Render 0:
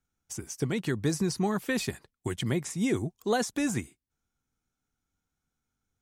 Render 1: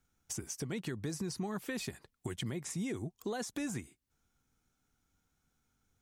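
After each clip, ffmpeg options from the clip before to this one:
ffmpeg -i in.wav -af "alimiter=limit=-24dB:level=0:latency=1:release=253,acompressor=threshold=-49dB:ratio=2,volume=5.5dB" out.wav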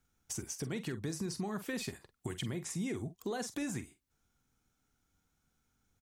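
ffmpeg -i in.wav -filter_complex "[0:a]asplit=2[link_01][link_02];[link_02]adelay=46,volume=-12dB[link_03];[link_01][link_03]amix=inputs=2:normalize=0" out.wav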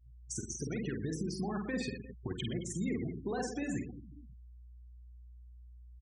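ffmpeg -i in.wav -af "aeval=exprs='val(0)+0.00158*(sin(2*PI*60*n/s)+sin(2*PI*2*60*n/s)/2+sin(2*PI*3*60*n/s)/3+sin(2*PI*4*60*n/s)/4+sin(2*PI*5*60*n/s)/5)':channel_layout=same,aecho=1:1:50|120|218|355.2|547.3:0.631|0.398|0.251|0.158|0.1,afftfilt=real='re*gte(hypot(re,im),0.0126)':imag='im*gte(hypot(re,im),0.0126)':win_size=1024:overlap=0.75" out.wav

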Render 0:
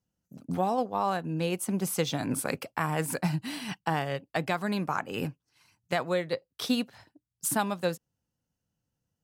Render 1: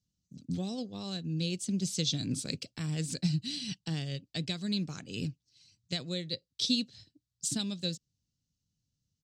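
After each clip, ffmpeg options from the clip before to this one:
ffmpeg -i in.wav -af "firequalizer=gain_entry='entry(110,0);entry(890,-28);entry(1600,-18);entry(3900,6);entry(7800,0);entry(11000,-22)':delay=0.05:min_phase=1,volume=1.5dB" out.wav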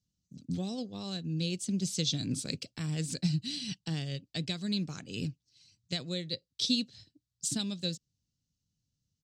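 ffmpeg -i in.wav -af anull out.wav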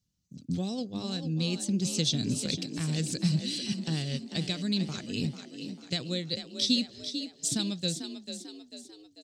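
ffmpeg -i in.wav -filter_complex "[0:a]asplit=7[link_01][link_02][link_03][link_04][link_05][link_06][link_07];[link_02]adelay=444,afreqshift=37,volume=-9dB[link_08];[link_03]adelay=888,afreqshift=74,volume=-15.2dB[link_09];[link_04]adelay=1332,afreqshift=111,volume=-21.4dB[link_10];[link_05]adelay=1776,afreqshift=148,volume=-27.6dB[link_11];[link_06]adelay=2220,afreqshift=185,volume=-33.8dB[link_12];[link_07]adelay=2664,afreqshift=222,volume=-40dB[link_13];[link_01][link_08][link_09][link_10][link_11][link_12][link_13]amix=inputs=7:normalize=0,volume=3dB" out.wav

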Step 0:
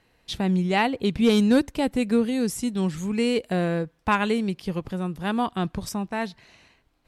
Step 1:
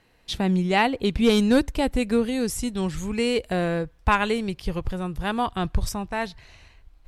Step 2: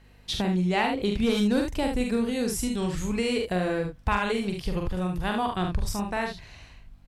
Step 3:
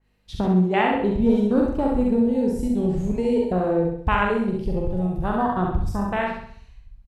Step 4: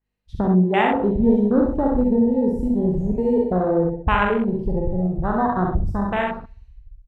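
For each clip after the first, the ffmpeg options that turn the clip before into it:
ffmpeg -i in.wav -af "asubboost=boost=11.5:cutoff=63,volume=2dB" out.wav
ffmpeg -i in.wav -af "aecho=1:1:44|73:0.631|0.422,acompressor=threshold=-26dB:ratio=2,aeval=exprs='val(0)+0.002*(sin(2*PI*50*n/s)+sin(2*PI*2*50*n/s)/2+sin(2*PI*3*50*n/s)/3+sin(2*PI*4*50*n/s)/4+sin(2*PI*5*50*n/s)/5)':channel_layout=same" out.wav
ffmpeg -i in.wav -af "afwtdn=0.0316,aecho=1:1:65|130|195|260|325|390:0.596|0.274|0.126|0.058|0.0267|0.0123,adynamicequalizer=threshold=0.00708:dfrequency=2500:dqfactor=0.7:tfrequency=2500:tqfactor=0.7:attack=5:release=100:ratio=0.375:range=2.5:mode=cutabove:tftype=highshelf,volume=4dB" out.wav
ffmpeg -i in.wav -af "afwtdn=0.0282,volume=2dB" out.wav

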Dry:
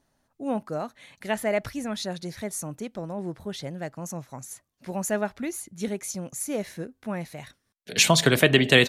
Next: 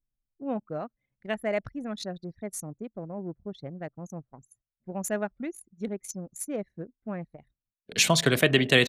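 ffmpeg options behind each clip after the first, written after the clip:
ffmpeg -i in.wav -af "bandreject=frequency=890:width=12,anlmdn=15.8,volume=-3dB" out.wav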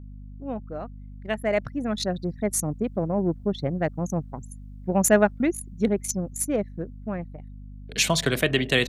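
ffmpeg -i in.wav -af "dynaudnorm=framelen=300:gausssize=13:maxgain=14.5dB,aeval=exprs='val(0)+0.0126*(sin(2*PI*50*n/s)+sin(2*PI*2*50*n/s)/2+sin(2*PI*3*50*n/s)/3+sin(2*PI*4*50*n/s)/4+sin(2*PI*5*50*n/s)/5)':channel_layout=same,volume=-1.5dB" out.wav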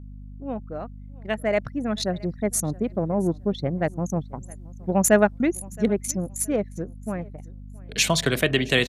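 ffmpeg -i in.wav -af "aecho=1:1:670|1340:0.0668|0.016,aresample=32000,aresample=44100,volume=1dB" out.wav

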